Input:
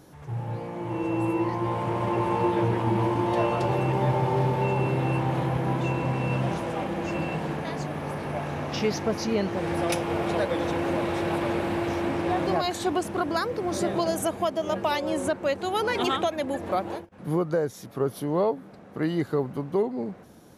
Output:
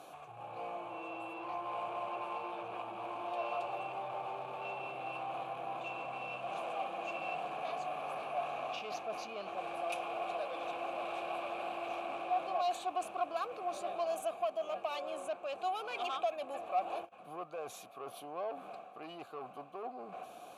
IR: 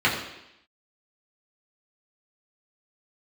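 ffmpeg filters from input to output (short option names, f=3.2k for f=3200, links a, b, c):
-filter_complex "[0:a]equalizer=f=5.3k:w=4:g=-9.5,areverse,acompressor=threshold=-39dB:ratio=4,areverse,asoftclip=type=tanh:threshold=-36dB,crystalizer=i=7:c=0,asplit=3[a][b][c];[a]bandpass=f=730:t=q:w=8,volume=0dB[d];[b]bandpass=f=1.09k:t=q:w=8,volume=-6dB[e];[c]bandpass=f=2.44k:t=q:w=8,volume=-9dB[f];[d][e][f]amix=inputs=3:normalize=0,volume=11.5dB"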